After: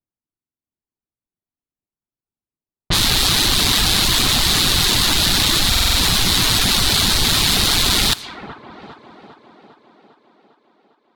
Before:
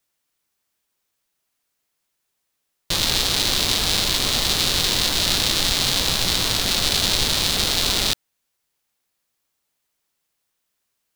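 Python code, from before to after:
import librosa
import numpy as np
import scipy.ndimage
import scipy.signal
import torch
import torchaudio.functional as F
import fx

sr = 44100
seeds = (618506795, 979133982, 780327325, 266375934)

p1 = fx.leveller(x, sr, passes=3)
p2 = fx.echo_thinned(p1, sr, ms=402, feedback_pct=74, hz=160.0, wet_db=-15.0)
p3 = fx.env_lowpass(p2, sr, base_hz=500.0, full_db=-10.5)
p4 = fx.dereverb_blind(p3, sr, rt60_s=0.72)
p5 = fx.over_compress(p4, sr, threshold_db=-18.0, ratio=-0.5)
p6 = p4 + F.gain(torch.from_numpy(p5), -1.0).numpy()
p7 = fx.peak_eq(p6, sr, hz=530.0, db=-9.0, octaves=0.8)
p8 = fx.buffer_glitch(p7, sr, at_s=(0.37, 5.7), block=2048, repeats=5)
y = F.gain(torch.from_numpy(p8), -4.5).numpy()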